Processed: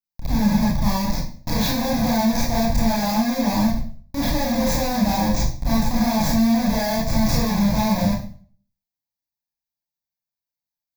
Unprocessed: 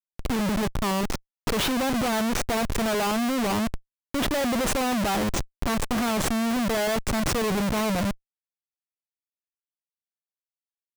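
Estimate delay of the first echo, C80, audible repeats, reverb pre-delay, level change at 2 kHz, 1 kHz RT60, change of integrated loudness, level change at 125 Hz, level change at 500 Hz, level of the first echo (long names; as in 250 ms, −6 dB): no echo audible, 8.5 dB, no echo audible, 23 ms, −1.0 dB, 0.40 s, +4.5 dB, +8.5 dB, +0.5 dB, no echo audible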